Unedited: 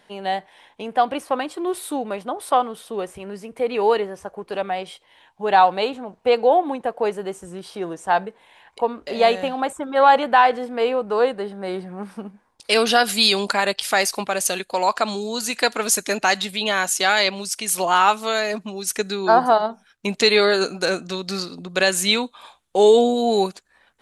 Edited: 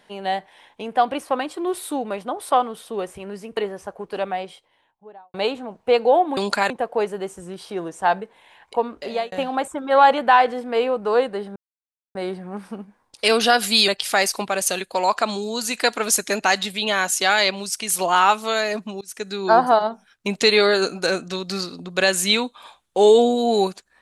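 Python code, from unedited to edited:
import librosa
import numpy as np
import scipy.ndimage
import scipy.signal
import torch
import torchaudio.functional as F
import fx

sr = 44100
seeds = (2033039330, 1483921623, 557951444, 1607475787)

y = fx.studio_fade_out(x, sr, start_s=4.52, length_s=1.2)
y = fx.edit(y, sr, fx.cut(start_s=3.57, length_s=0.38),
    fx.fade_out_span(start_s=9.03, length_s=0.34),
    fx.insert_silence(at_s=11.61, length_s=0.59),
    fx.move(start_s=13.34, length_s=0.33, to_s=6.75),
    fx.fade_in_from(start_s=18.8, length_s=0.46, floor_db=-23.5), tone=tone)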